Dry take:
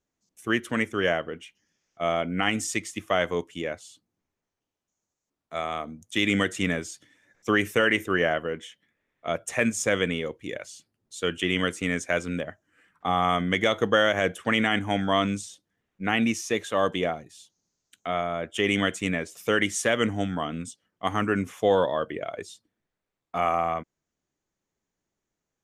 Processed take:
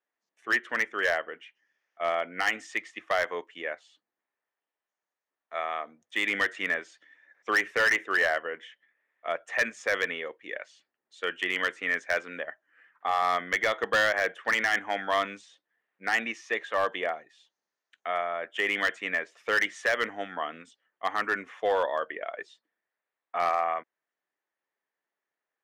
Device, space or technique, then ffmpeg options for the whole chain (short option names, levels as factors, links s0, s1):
megaphone: -af "highpass=610,lowpass=2600,equalizer=f=1800:t=o:w=0.25:g=7.5,asoftclip=type=hard:threshold=0.126"